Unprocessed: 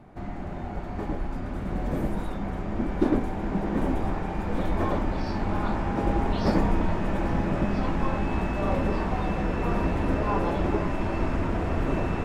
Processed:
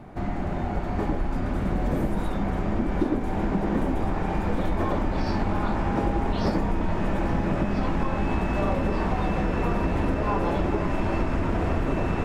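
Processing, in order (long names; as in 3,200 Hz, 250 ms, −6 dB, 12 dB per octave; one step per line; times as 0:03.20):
downward compressor, threshold −27 dBFS, peak gain reduction 10 dB
level +6.5 dB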